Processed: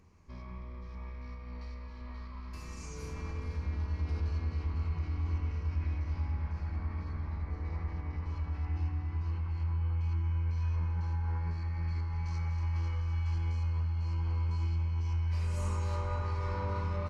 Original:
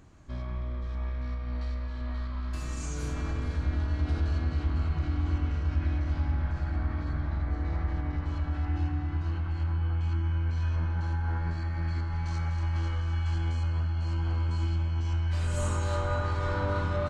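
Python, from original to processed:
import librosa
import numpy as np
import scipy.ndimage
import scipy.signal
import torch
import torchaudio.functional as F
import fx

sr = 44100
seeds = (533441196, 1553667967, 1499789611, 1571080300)

y = fx.ripple_eq(x, sr, per_octave=0.84, db=9)
y = y * librosa.db_to_amplitude(-7.5)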